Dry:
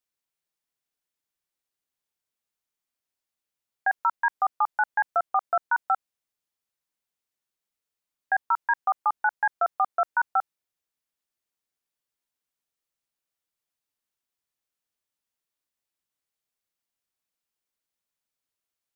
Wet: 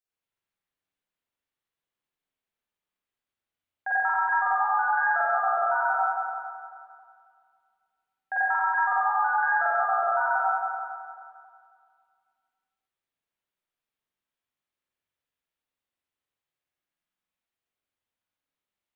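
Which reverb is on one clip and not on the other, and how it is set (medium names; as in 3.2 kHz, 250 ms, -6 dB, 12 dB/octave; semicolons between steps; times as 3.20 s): spring tank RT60 2.1 s, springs 43/54 ms, chirp 45 ms, DRR -10 dB; trim -8.5 dB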